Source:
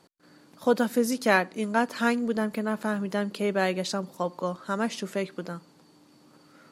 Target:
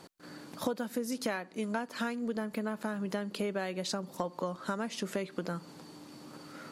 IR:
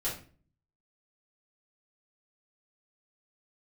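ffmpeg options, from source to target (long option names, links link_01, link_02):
-af "acompressor=threshold=-38dB:ratio=12,volume=7.5dB"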